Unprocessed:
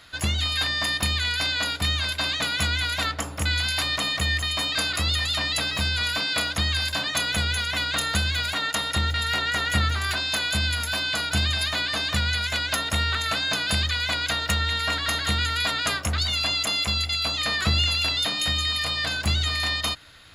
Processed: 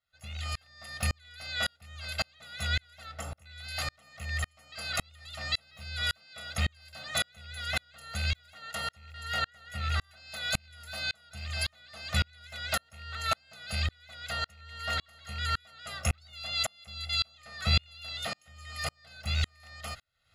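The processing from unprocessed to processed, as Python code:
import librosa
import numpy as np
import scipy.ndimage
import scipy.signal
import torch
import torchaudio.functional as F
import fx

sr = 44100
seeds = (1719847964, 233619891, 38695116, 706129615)

y = fx.rattle_buzz(x, sr, strikes_db=-23.0, level_db=-18.0)
y = y + 0.93 * np.pad(y, (int(1.5 * sr / 1000.0), 0))[:len(y)]
y = fx.tremolo_decay(y, sr, direction='swelling', hz=1.8, depth_db=39)
y = F.gain(torch.from_numpy(y), -4.0).numpy()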